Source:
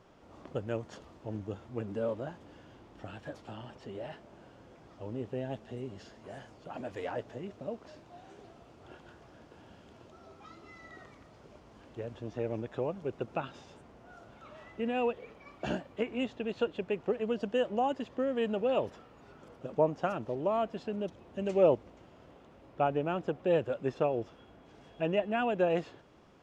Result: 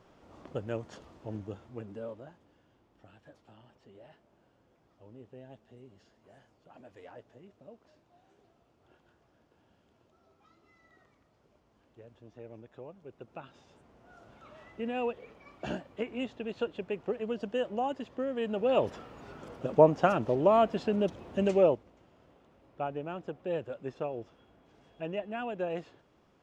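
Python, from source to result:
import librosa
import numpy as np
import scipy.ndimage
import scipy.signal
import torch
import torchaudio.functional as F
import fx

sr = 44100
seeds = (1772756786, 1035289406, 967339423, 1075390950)

y = fx.gain(x, sr, db=fx.line((1.36, -0.5), (2.56, -13.0), (13.05, -13.0), (14.3, -2.0), (18.44, -2.0), (18.98, 7.0), (21.44, 7.0), (21.84, -6.0)))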